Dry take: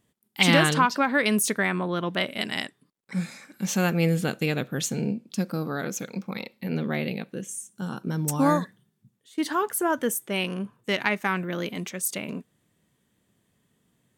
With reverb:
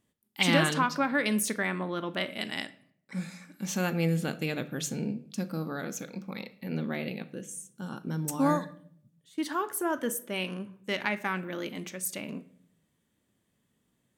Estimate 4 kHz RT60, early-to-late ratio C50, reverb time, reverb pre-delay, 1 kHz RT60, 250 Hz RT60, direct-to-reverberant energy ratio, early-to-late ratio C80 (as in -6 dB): 0.45 s, 17.0 dB, 0.65 s, 3 ms, 0.55 s, 0.85 s, 11.5 dB, 20.5 dB